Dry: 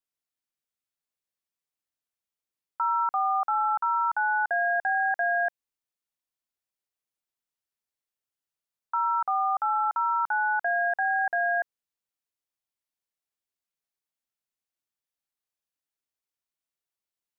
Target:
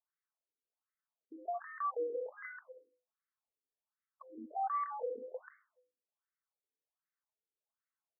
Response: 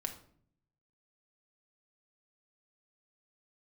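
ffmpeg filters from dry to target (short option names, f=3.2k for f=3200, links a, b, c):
-filter_complex "[0:a]aeval=exprs='0.0355*(abs(mod(val(0)/0.0355+3,4)-2)-1)':c=same,asetrate=93492,aresample=44100,bandreject=f=50:t=h:w=6,bandreject=f=100:t=h:w=6,bandreject=f=150:t=h:w=6,bandreject=f=200:t=h:w=6,bandreject=f=250:t=h:w=6,bandreject=f=300:t=h:w=6,bandreject=f=350:t=h:w=6,bandreject=f=400:t=h:w=6,bandreject=f=450:t=h:w=6,bandreject=f=500:t=h:w=6[a];[1:a]atrim=start_sample=2205,afade=t=out:st=0.36:d=0.01,atrim=end_sample=16317[b];[a][b]afir=irnorm=-1:irlink=0,afftfilt=real='re*between(b*sr/1024,350*pow(1600/350,0.5+0.5*sin(2*PI*1.3*pts/sr))/1.41,350*pow(1600/350,0.5+0.5*sin(2*PI*1.3*pts/sr))*1.41)':imag='im*between(b*sr/1024,350*pow(1600/350,0.5+0.5*sin(2*PI*1.3*pts/sr))/1.41,350*pow(1600/350,0.5+0.5*sin(2*PI*1.3*pts/sr))*1.41)':win_size=1024:overlap=0.75,volume=7dB"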